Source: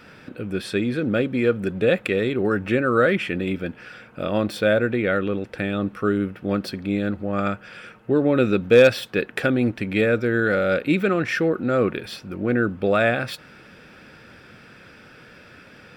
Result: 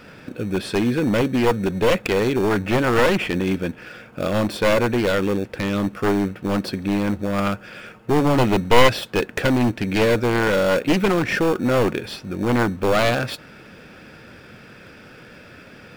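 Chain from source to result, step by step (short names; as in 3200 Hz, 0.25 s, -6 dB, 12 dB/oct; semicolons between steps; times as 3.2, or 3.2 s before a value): one-sided fold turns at -17.5 dBFS; in parallel at -10 dB: sample-and-hold 22×; on the sum: gain +2 dB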